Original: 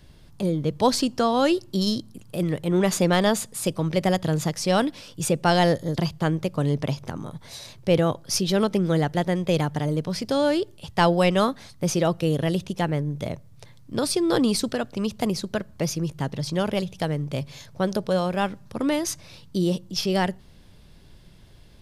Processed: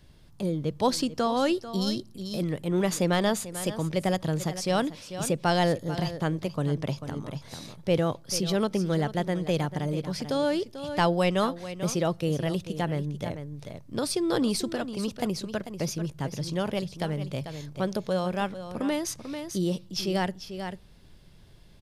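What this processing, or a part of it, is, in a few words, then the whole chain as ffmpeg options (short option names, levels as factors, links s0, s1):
ducked delay: -filter_complex "[0:a]asplit=3[s0][s1][s2];[s1]adelay=442,volume=0.473[s3];[s2]apad=whole_len=981446[s4];[s3][s4]sidechaincompress=threshold=0.0501:ratio=5:attack=20:release=732[s5];[s0][s5]amix=inputs=2:normalize=0,volume=0.596"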